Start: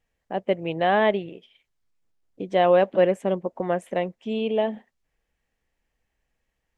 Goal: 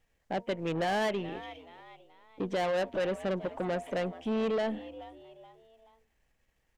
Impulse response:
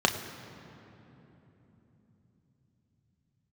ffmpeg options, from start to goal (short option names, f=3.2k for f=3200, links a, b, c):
-filter_complex "[0:a]aeval=exprs='if(lt(val(0),0),0.708*val(0),val(0))':c=same,acrossover=split=1800[a][b];[a]alimiter=limit=-19dB:level=0:latency=1:release=339[c];[c][b]amix=inputs=2:normalize=0,bandreject=f=233:t=h:w=4,bandreject=f=466:t=h:w=4,bandreject=f=699:t=h:w=4,bandreject=f=932:t=h:w=4,asplit=2[d][e];[e]asplit=3[f][g][h];[f]adelay=428,afreqshift=75,volume=-21.5dB[i];[g]adelay=856,afreqshift=150,volume=-29.7dB[j];[h]adelay=1284,afreqshift=225,volume=-37.9dB[k];[i][j][k]amix=inputs=3:normalize=0[l];[d][l]amix=inputs=2:normalize=0,acrossover=split=3300[m][n];[n]acompressor=threshold=-58dB:ratio=4:attack=1:release=60[o];[m][o]amix=inputs=2:normalize=0,asoftclip=type=tanh:threshold=-30dB,volume=4dB"